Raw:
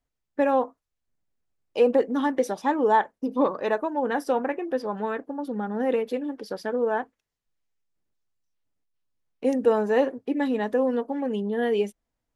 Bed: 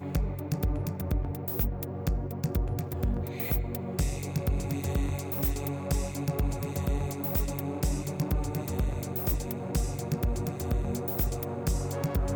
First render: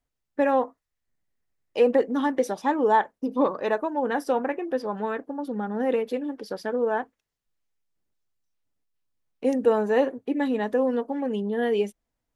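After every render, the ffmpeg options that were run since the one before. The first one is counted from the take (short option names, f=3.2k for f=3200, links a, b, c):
-filter_complex "[0:a]asettb=1/sr,asplit=3[a][b][c];[a]atrim=end=0.444[d];[b]atrim=start=0.44:end=1.99,asetpts=PTS-STARTPTS,afade=t=in:d=0.004:c=qsin,afade=t=out:st=1.546:d=0.004:c=qsin,equalizer=f=1.9k:t=o:w=0.27:g=8.5[e];[c]atrim=start=1.986[f];[d][e]acrossfade=d=0.004:c1=hsin:c2=qsin[g];[g][f]acrossfade=d=0.004:c1=qsin:c2=hsin,asettb=1/sr,asplit=3[h][i][j];[h]atrim=end=9.644[k];[i]atrim=start=9.64:end=10.68,asetpts=PTS-STARTPTS,afade=t=in:d=0.004:c=qsin,afade=t=out:st=1.036:d=0.004:c=qsin,bandreject=f=5.2k:w=7.7[l];[j]atrim=start=10.676[m];[k][l]acrossfade=d=0.004:c1=hsin:c2=qsin[n];[n][m]acrossfade=d=0.004:c1=qsin:c2=hsin"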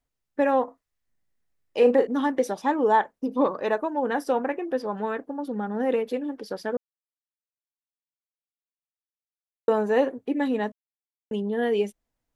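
-filter_complex "[0:a]asettb=1/sr,asplit=3[a][b][c];[a]atrim=end=0.644[d];[b]atrim=start=0.64:end=2.07,asetpts=PTS-STARTPTS,afade=t=in:d=0.004:c=qsin,afade=t=out:st=1.426:d=0.004:c=qsin,asplit=2[e][f];[f]adelay=37,volume=-8dB[g];[e][g]amix=inputs=2:normalize=0,atrim=end_sample=63063[h];[c]atrim=start=2.066[i];[d][h]acrossfade=d=0.004:c1=hsin:c2=qsin[j];[j][i]acrossfade=d=0.004:c1=qsin:c2=hsin,asplit=5[k][l][m][n][o];[k]atrim=end=6.77,asetpts=PTS-STARTPTS,afade=t=out:st=6.766:d=0.004:c=hsin[p];[l]atrim=start=6.77:end=9.68,asetpts=PTS-STARTPTS,volume=0[q];[m]atrim=start=9.68:end=10.72,asetpts=PTS-STARTPTS,afade=t=in:d=0.004:c=hsin,afade=t=out:st=1.036:d=0.004:c=hsin[r];[n]atrim=start=10.72:end=11.31,asetpts=PTS-STARTPTS,volume=0[s];[o]atrim=start=11.31,asetpts=PTS-STARTPTS,afade=t=in:d=0.004:c=hsin[t];[p][q][r][s][t]concat=n=5:v=0:a=1"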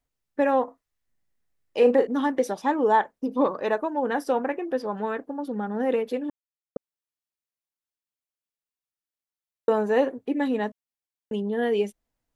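-filter_complex "[0:a]asplit=3[a][b][c];[a]atrim=end=6.3,asetpts=PTS-STARTPTS,afade=t=out:st=6.296:d=0.004:c=hsin[d];[b]atrim=start=6.3:end=6.76,asetpts=PTS-STARTPTS,volume=0[e];[c]atrim=start=6.76,asetpts=PTS-STARTPTS,afade=t=in:d=0.004:c=hsin[f];[d][e][f]concat=n=3:v=0:a=1"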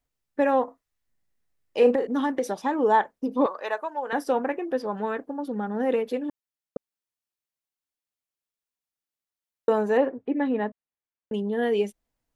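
-filter_complex "[0:a]asettb=1/sr,asplit=3[a][b][c];[a]atrim=end=1.954[d];[b]atrim=start=1.95:end=2.79,asetpts=PTS-STARTPTS,afade=t=in:d=0.004:c=qsin,afade=t=out:st=0.836:d=0.004:c=qsin,acompressor=threshold=-20dB:ratio=4:attack=3.2:release=140:knee=1:detection=peak[e];[c]atrim=start=2.786[f];[d][e]acrossfade=d=0.004:c1=hsin:c2=qsin[g];[g][f]acrossfade=d=0.004:c1=qsin:c2=hsin,asettb=1/sr,asplit=3[h][i][j];[h]atrim=end=3.464[k];[i]atrim=start=3.46:end=4.13,asetpts=PTS-STARTPTS,afade=t=in:d=0.004:c=qsin,afade=t=out:st=0.666:d=0.004:c=qsin,highpass=690[l];[j]atrim=start=4.126[m];[k][l]acrossfade=d=0.004:c1=hsin:c2=qsin[n];[n][m]acrossfade=d=0.004:c1=qsin:c2=hsin,asettb=1/sr,asplit=3[o][p][q];[o]atrim=end=9.974[r];[p]atrim=start=9.97:end=11.34,asetpts=PTS-STARTPTS,afade=t=in:d=0.004:c=qsin,afade=t=out:st=1.366:d=0.004:c=qsin,lowpass=2.3k[s];[q]atrim=start=11.336[t];[r][s]acrossfade=d=0.004:c1=hsin:c2=qsin[u];[u][t]acrossfade=d=0.004:c1=qsin:c2=hsin"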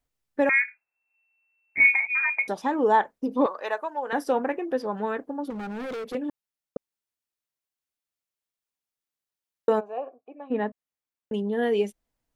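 -filter_complex "[0:a]asettb=1/sr,asplit=3[a][b][c];[a]atrim=end=0.494[d];[b]atrim=start=0.49:end=2.48,asetpts=PTS-STARTPTS,afade=t=in:d=0.004:c=qsin,afade=t=out:st=1.986:d=0.004:c=qsin,lowpass=f=2.3k:t=q:w=0.5098,lowpass=f=2.3k:t=q:w=0.6013,lowpass=f=2.3k:t=q:w=0.9,lowpass=f=2.3k:t=q:w=2.563,afreqshift=-2700[e];[c]atrim=start=2.476[f];[d][e]acrossfade=d=0.004:c1=hsin:c2=qsin[g];[g][f]acrossfade=d=0.004:c1=qsin:c2=hsin,asettb=1/sr,asplit=3[h][i][j];[h]atrim=end=5.504[k];[i]atrim=start=5.5:end=6.15,asetpts=PTS-STARTPTS,afade=t=in:d=0.004:c=qsin,afade=t=out:st=0.646:d=0.004:c=qsin,asoftclip=type=hard:threshold=-31.5dB[l];[j]atrim=start=6.146[m];[k][l]acrossfade=d=0.004:c1=hsin:c2=qsin[n];[n][m]acrossfade=d=0.004:c1=qsin:c2=hsin,asplit=3[o][p][q];[o]afade=t=out:st=9.79:d=0.02[r];[p]asplit=3[s][t][u];[s]bandpass=f=730:t=q:w=8,volume=0dB[v];[t]bandpass=f=1.09k:t=q:w=8,volume=-6dB[w];[u]bandpass=f=2.44k:t=q:w=8,volume=-9dB[x];[v][w][x]amix=inputs=3:normalize=0,afade=t=in:st=9.79:d=0.02,afade=t=out:st=10.5:d=0.02[y];[q]afade=t=in:st=10.5:d=0.02[z];[r][y][z]amix=inputs=3:normalize=0"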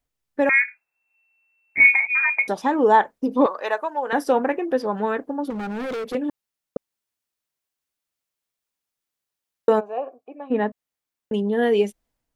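-af "dynaudnorm=f=180:g=5:m=5dB"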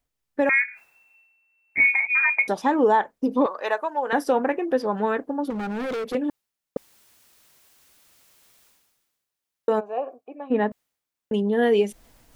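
-af "areverse,acompressor=mode=upward:threshold=-36dB:ratio=2.5,areverse,alimiter=limit=-10.5dB:level=0:latency=1:release=253"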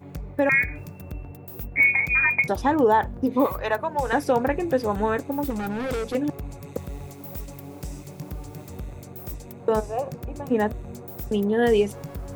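-filter_complex "[1:a]volume=-6.5dB[a];[0:a][a]amix=inputs=2:normalize=0"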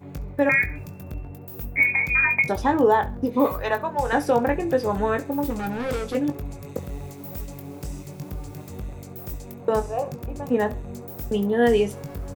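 -filter_complex "[0:a]asplit=2[a][b];[b]adelay=21,volume=-8.5dB[c];[a][c]amix=inputs=2:normalize=0,aecho=1:1:68|136:0.106|0.0307"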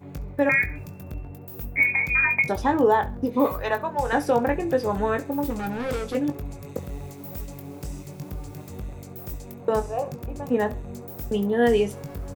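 -af "volume=-1dB"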